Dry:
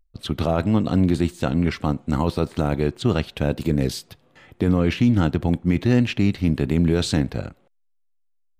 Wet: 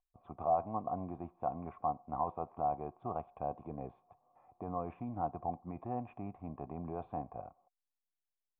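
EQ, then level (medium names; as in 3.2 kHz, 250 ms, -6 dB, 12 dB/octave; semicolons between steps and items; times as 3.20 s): cascade formant filter a; distance through air 270 m; +2.5 dB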